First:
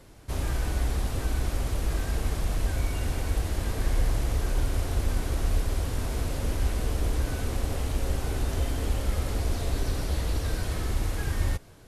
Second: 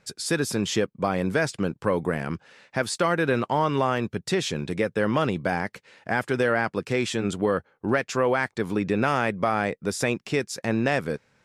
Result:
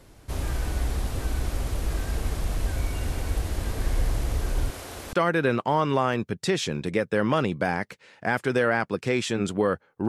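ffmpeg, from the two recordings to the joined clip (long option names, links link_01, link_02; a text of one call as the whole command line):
ffmpeg -i cue0.wav -i cue1.wav -filter_complex "[0:a]asettb=1/sr,asplit=3[link_01][link_02][link_03];[link_01]atrim=end=4.704[link_04];[link_02]atrim=start=4.7:end=5.13,asetpts=PTS-STARTPTS,afade=type=in:duration=0.004:curve=qsin,afade=type=out:start_time=0.426:duration=0.004:curve=qsin,highpass=frequency=510:poles=1[link_05];[link_03]atrim=start=5.126[link_06];[link_04][link_05]acrossfade=duration=0.004:curve1=hsin:curve2=qsin[link_07];[link_07][link_06]acrossfade=duration=0.004:curve1=qsin:curve2=hsin,apad=whole_dur=10.08,atrim=end=10.08,atrim=end=5.132[link_08];[1:a]atrim=start=2.968:end=7.92[link_09];[link_08][link_09]acrossfade=duration=0.004:curve1=hsin:curve2=hsin" out.wav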